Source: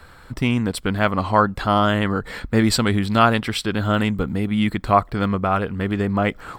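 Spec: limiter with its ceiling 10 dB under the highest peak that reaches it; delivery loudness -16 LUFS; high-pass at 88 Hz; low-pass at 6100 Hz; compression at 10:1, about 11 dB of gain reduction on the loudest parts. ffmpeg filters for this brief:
-af "highpass=88,lowpass=6.1k,acompressor=threshold=-21dB:ratio=10,volume=13.5dB,alimiter=limit=-5.5dB:level=0:latency=1"

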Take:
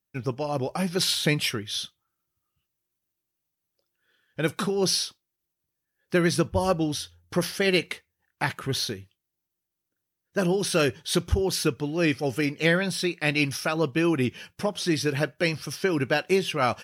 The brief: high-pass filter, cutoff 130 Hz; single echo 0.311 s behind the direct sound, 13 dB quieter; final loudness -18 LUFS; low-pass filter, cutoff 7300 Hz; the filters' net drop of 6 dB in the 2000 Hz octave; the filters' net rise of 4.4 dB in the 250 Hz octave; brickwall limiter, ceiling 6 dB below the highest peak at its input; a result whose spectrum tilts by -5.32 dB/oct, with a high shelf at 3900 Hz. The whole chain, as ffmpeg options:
-af "highpass=130,lowpass=7.3k,equalizer=f=250:t=o:g=7.5,equalizer=f=2k:t=o:g=-7,highshelf=f=3.9k:g=-3.5,alimiter=limit=-13.5dB:level=0:latency=1,aecho=1:1:311:0.224,volume=8dB"

